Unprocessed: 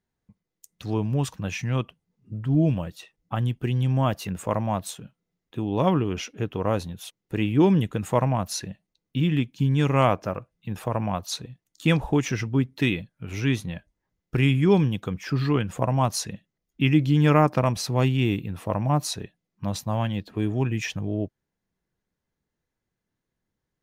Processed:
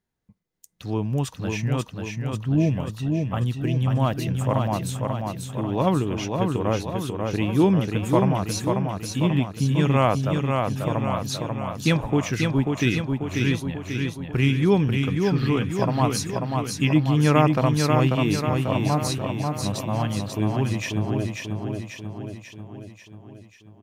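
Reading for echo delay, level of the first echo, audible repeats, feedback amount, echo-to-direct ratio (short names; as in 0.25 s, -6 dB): 0.54 s, -4.0 dB, 7, 57%, -2.5 dB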